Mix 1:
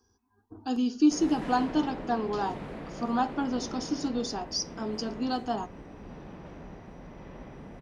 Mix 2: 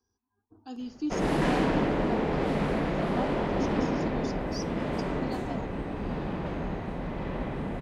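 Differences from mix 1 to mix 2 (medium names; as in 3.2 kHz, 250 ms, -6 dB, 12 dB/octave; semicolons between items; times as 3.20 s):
speech -10.5 dB; background +12.0 dB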